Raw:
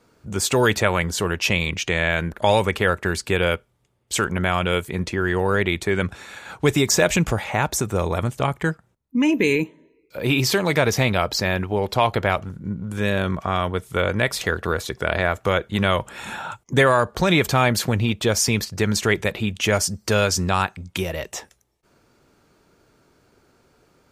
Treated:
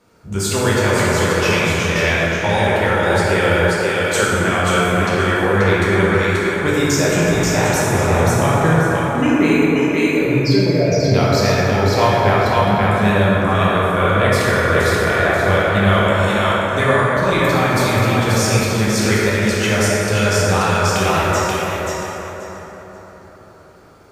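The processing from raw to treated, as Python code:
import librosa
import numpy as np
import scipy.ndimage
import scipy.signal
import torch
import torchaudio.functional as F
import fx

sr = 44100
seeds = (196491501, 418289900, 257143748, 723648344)

y = fx.spec_expand(x, sr, power=2.5, at=(10.24, 11.14))
y = fx.echo_thinned(y, sr, ms=533, feedback_pct=21, hz=420.0, wet_db=-4.0)
y = fx.rider(y, sr, range_db=5, speed_s=0.5)
y = fx.rev_plate(y, sr, seeds[0], rt60_s=4.4, hf_ratio=0.35, predelay_ms=0, drr_db=-8.0)
y = F.gain(torch.from_numpy(y), -3.5).numpy()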